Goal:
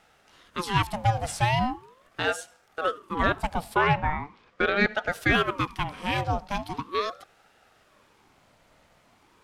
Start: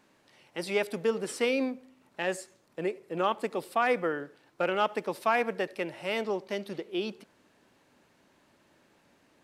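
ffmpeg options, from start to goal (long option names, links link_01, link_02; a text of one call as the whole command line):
ffmpeg -i in.wav -filter_complex "[0:a]asettb=1/sr,asplit=3[link_01][link_02][link_03];[link_01]atrim=end=3.814[link_04];[link_02]atrim=start=3.81:end=5.08,asetpts=PTS-STARTPTS,afade=type=in:duration=0.004:curve=qsin,afade=type=out:start_time=1.266:duration=0.004:curve=qsin,lowpass=4600[link_05];[link_03]atrim=start=5.076[link_06];[link_04][link_05]acrossfade=duration=0.004:curve1=hsin:curve2=qsin[link_07];[link_07][link_06]acrossfade=duration=0.004:curve1=qsin:curve2=hsin,aeval=exprs='val(0)*sin(2*PI*690*n/s+690*0.55/0.4*sin(2*PI*0.4*n/s))':channel_layout=same,volume=7dB" out.wav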